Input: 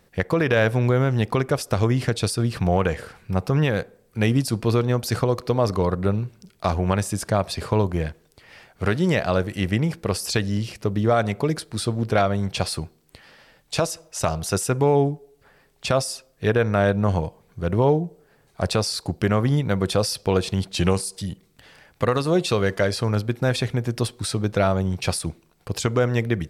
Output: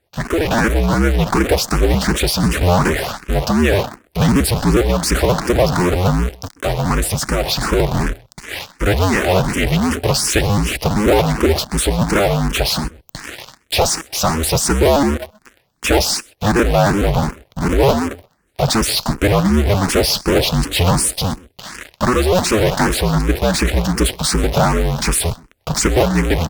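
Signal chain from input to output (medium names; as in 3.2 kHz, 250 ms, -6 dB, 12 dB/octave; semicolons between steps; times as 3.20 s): cycle switcher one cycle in 2, inverted; in parallel at -4 dB: fuzz box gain 48 dB, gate -48 dBFS; on the sum: echo from a far wall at 22 m, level -20 dB; Chebyshev shaper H 7 -25 dB, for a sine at -4.5 dBFS; level rider; barber-pole phaser +2.7 Hz; trim -2 dB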